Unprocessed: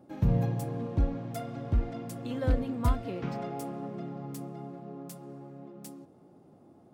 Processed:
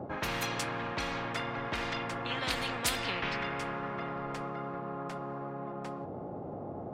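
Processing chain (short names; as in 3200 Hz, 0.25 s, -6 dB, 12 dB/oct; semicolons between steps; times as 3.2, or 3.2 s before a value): low-pass opened by the level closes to 1000 Hz, open at -21 dBFS; spectral compressor 10:1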